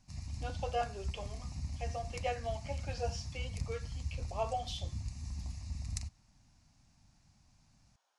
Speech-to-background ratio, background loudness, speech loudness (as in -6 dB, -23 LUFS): 1.5 dB, -42.5 LUFS, -41.0 LUFS